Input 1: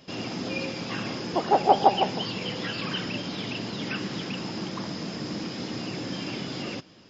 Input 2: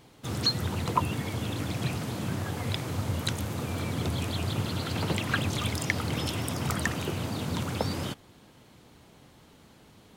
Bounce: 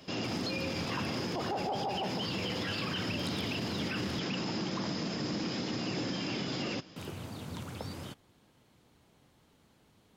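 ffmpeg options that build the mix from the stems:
-filter_complex "[0:a]volume=1[s0];[1:a]volume=0.316,asplit=3[s1][s2][s3];[s1]atrim=end=4.19,asetpts=PTS-STARTPTS,afade=t=out:st=4.186:d=0.004:c=hsin[s4];[s2]atrim=start=4.19:end=6.96,asetpts=PTS-STARTPTS,volume=0[s5];[s3]atrim=start=6.96,asetpts=PTS-STARTPTS,afade=t=in:d=0.004:c=hsin[s6];[s4][s5][s6]concat=n=3:v=0:a=1[s7];[s0][s7]amix=inputs=2:normalize=0,alimiter=level_in=1.26:limit=0.0631:level=0:latency=1:release=29,volume=0.794"

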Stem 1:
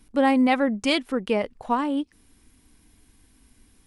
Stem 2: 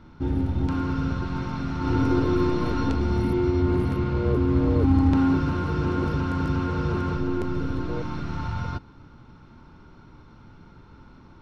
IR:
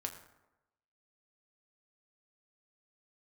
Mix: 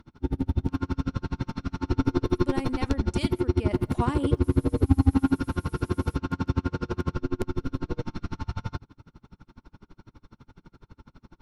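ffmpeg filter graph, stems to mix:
-filter_complex "[0:a]aemphasis=mode=production:type=75kf,adelay=2300,volume=0.335,afade=t=in:st=3.63:d=0.2:silence=0.298538,asplit=2[s0][s1];[s1]volume=0.316[s2];[1:a]aemphasis=mode=production:type=cd,bandreject=f=50:t=h:w=6,bandreject=f=100:t=h:w=6,bandreject=f=150:t=h:w=6,aeval=exprs='val(0)*pow(10,-36*(0.5-0.5*cos(2*PI*12*n/s))/20)':c=same,volume=1.12[s3];[2:a]atrim=start_sample=2205[s4];[s2][s4]afir=irnorm=-1:irlink=0[s5];[s0][s3][s5]amix=inputs=3:normalize=0,lowshelf=f=440:g=4"

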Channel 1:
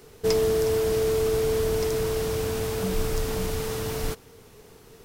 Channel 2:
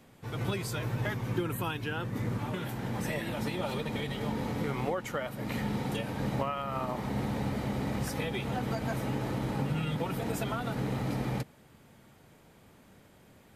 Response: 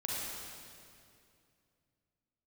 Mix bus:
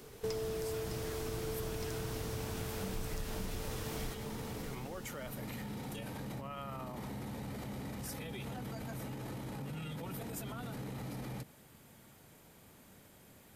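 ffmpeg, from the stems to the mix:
-filter_complex "[0:a]volume=0.531,asplit=3[s0][s1][s2];[s1]volume=0.2[s3];[s2]volume=0.316[s4];[1:a]acrossover=split=320[s5][s6];[s6]acompressor=threshold=0.0141:ratio=6[s7];[s5][s7]amix=inputs=2:normalize=0,alimiter=level_in=2.66:limit=0.0631:level=0:latency=1:release=19,volume=0.376,crystalizer=i=1.5:c=0,volume=0.75[s8];[2:a]atrim=start_sample=2205[s9];[s3][s9]afir=irnorm=-1:irlink=0[s10];[s4]aecho=0:1:609|1218|1827|2436|3045|3654:1|0.42|0.176|0.0741|0.0311|0.0131[s11];[s0][s8][s10][s11]amix=inputs=4:normalize=0,acompressor=threshold=0.0126:ratio=3"

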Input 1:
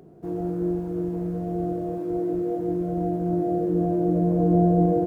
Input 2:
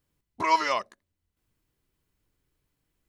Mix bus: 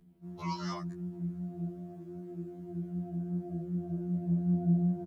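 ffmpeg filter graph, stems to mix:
-filter_complex "[0:a]firequalizer=gain_entry='entry(260,0);entry(530,-11);entry(910,3)':delay=0.05:min_phase=1,flanger=delay=20:depth=5.3:speed=2.6,volume=0.266[s0];[1:a]acompressor=threshold=0.0316:ratio=2,asplit=2[s1][s2];[s2]afreqshift=0.73[s3];[s1][s3]amix=inputs=2:normalize=1,volume=0.794[s4];[s0][s4]amix=inputs=2:normalize=0,equalizer=f=160:t=o:w=0.67:g=6,equalizer=f=400:t=o:w=0.67:g=-3,equalizer=f=1000:t=o:w=0.67:g=-6,aeval=exprs='val(0)+0.00158*(sin(2*PI*60*n/s)+sin(2*PI*2*60*n/s)/2+sin(2*PI*3*60*n/s)/3+sin(2*PI*4*60*n/s)/4+sin(2*PI*5*60*n/s)/5)':c=same,afftfilt=real='re*2*eq(mod(b,4),0)':imag='im*2*eq(mod(b,4),0)':win_size=2048:overlap=0.75"

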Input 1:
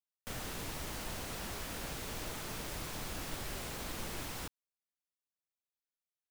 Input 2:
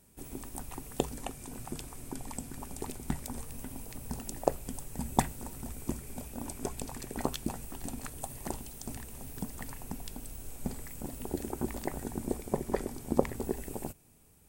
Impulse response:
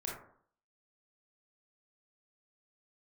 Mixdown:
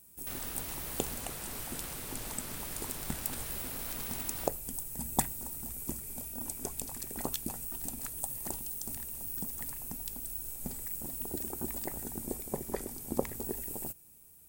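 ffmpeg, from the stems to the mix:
-filter_complex "[0:a]aeval=exprs='(mod(42.2*val(0)+1,2)-1)/42.2':c=same,volume=0.75[s0];[1:a]aemphasis=mode=production:type=50fm,volume=0.562[s1];[s0][s1]amix=inputs=2:normalize=0"

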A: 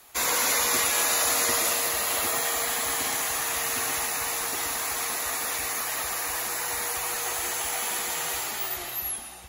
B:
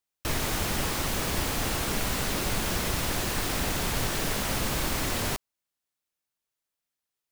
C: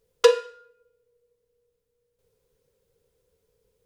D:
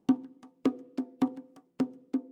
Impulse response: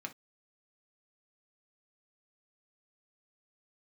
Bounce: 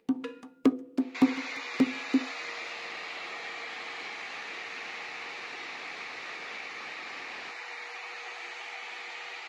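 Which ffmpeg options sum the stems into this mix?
-filter_complex "[0:a]adelay=1000,volume=1.26[s0];[1:a]alimiter=limit=0.106:level=0:latency=1:release=204,adelay=2150,volume=1[s1];[2:a]acompressor=mode=upward:threshold=0.0158:ratio=2.5,volume=0.178,asplit=2[s2][s3];[s3]volume=0.251[s4];[3:a]dynaudnorm=f=130:g=3:m=3.55,volume=0.376,asplit=2[s5][s6];[s6]volume=0.398[s7];[s0][s1][s2]amix=inputs=3:normalize=0,highpass=490,equalizer=f=610:t=q:w=4:g=-7,equalizer=f=1000:t=q:w=4:g=-6,equalizer=f=1500:t=q:w=4:g=-4,equalizer=f=2300:t=q:w=4:g=6,equalizer=f=3300:t=q:w=4:g=-4,lowpass=f=4100:w=0.5412,lowpass=f=4100:w=1.3066,acompressor=threshold=0.00562:ratio=2,volume=1[s8];[4:a]atrim=start_sample=2205[s9];[s4][s7]amix=inputs=2:normalize=0[s10];[s10][s9]afir=irnorm=-1:irlink=0[s11];[s5][s8][s11]amix=inputs=3:normalize=0"

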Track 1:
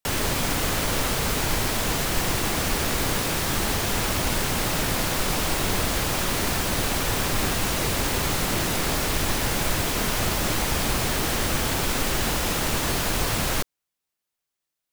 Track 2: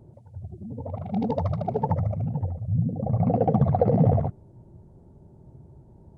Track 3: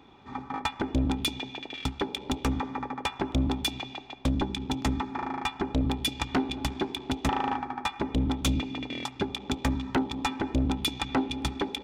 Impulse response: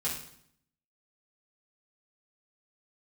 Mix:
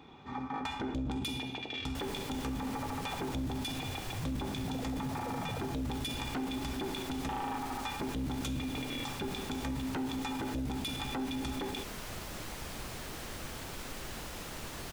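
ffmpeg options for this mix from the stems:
-filter_complex "[0:a]highshelf=f=10000:g=-3.5,adelay=1900,volume=0.133[s0];[1:a]adelay=1450,volume=0.188[s1];[2:a]volume=0.841,asplit=2[s2][s3];[s3]volume=0.299[s4];[3:a]atrim=start_sample=2205[s5];[s4][s5]afir=irnorm=-1:irlink=0[s6];[s0][s1][s2][s6]amix=inputs=4:normalize=0,alimiter=level_in=1.78:limit=0.0631:level=0:latency=1:release=23,volume=0.562"

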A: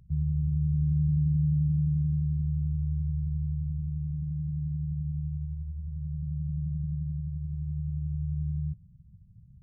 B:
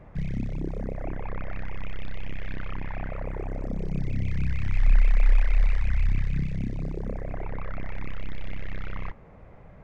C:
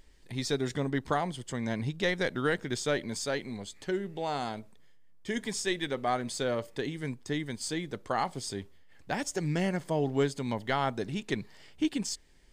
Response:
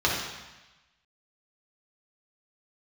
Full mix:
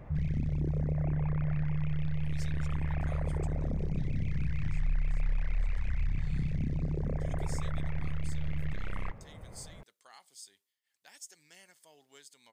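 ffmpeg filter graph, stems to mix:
-filter_complex "[0:a]volume=0.841[s0];[1:a]volume=0.891[s1];[2:a]aderivative,adelay=1950,volume=1.41,afade=t=out:st=3.35:d=0.38:silence=0.251189,afade=t=in:st=5.57:d=0.22:silence=0.298538[s2];[s0][s1][s2]amix=inputs=3:normalize=0,acompressor=threshold=0.0398:ratio=3"

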